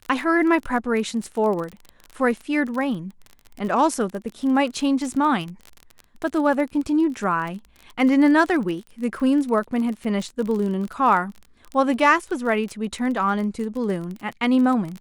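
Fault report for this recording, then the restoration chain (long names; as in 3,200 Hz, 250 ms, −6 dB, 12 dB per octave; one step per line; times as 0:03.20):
surface crackle 30 per second −28 dBFS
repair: click removal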